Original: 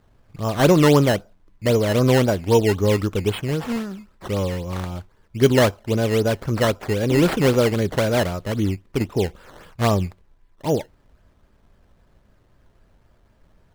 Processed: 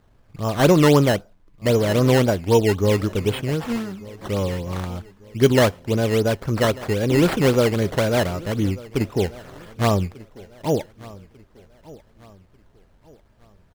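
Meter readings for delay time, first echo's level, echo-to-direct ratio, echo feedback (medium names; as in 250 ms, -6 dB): 1193 ms, -21.0 dB, -20.5 dB, 40%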